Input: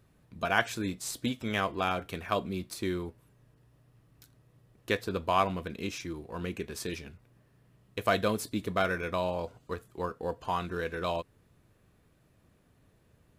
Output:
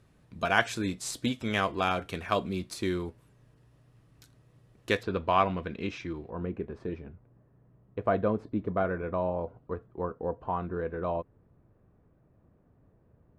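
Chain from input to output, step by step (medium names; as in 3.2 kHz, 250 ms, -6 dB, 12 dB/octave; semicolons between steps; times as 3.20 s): low-pass 10 kHz 12 dB/octave, from 5.03 s 3 kHz, from 6.30 s 1 kHz; trim +2 dB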